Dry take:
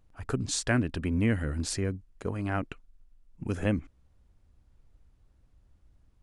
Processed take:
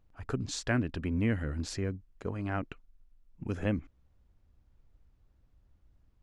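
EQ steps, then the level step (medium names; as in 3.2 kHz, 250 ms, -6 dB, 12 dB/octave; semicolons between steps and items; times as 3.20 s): treble shelf 6.1 kHz -5 dB; peaking EQ 9.1 kHz -11.5 dB 0.28 oct; -3.0 dB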